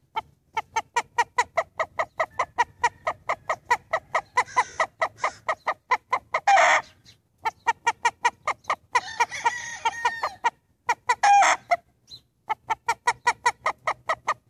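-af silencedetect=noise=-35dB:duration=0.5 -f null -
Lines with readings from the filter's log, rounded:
silence_start: 6.81
silence_end: 7.45 | silence_duration: 0.65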